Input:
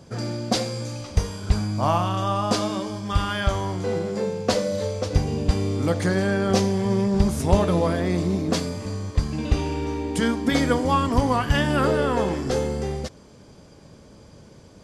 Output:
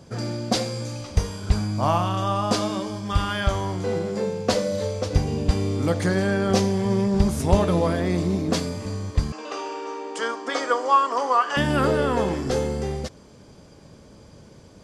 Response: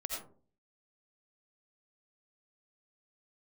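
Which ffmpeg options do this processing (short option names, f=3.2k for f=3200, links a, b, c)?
-filter_complex "[0:a]asettb=1/sr,asplit=3[a][b][c];[a]atrim=end=9.324[d];[b]atrim=start=9.32:end=11.57,asetpts=PTS-STARTPTS,afade=t=in:d=0.004:c=qsin,afade=t=out:st=2.246:d=0.004:c=qsin,highpass=f=410:w=0.5412,highpass=f=410:w=1.3066,equalizer=f=1.2k:t=q:w=4:g=9,equalizer=f=2.2k:t=q:w=4:g=-5,equalizer=f=3.8k:t=q:w=4:g=-6,lowpass=f=7.6k:w=0.5412,lowpass=f=7.6k:w=1.3066[e];[c]atrim=start=11.566[f];[d][e]acrossfade=d=0.004:c1=hsin:c2=qsin[g];[g][f]acrossfade=d=0.004:c1=qsin:c2=hsin"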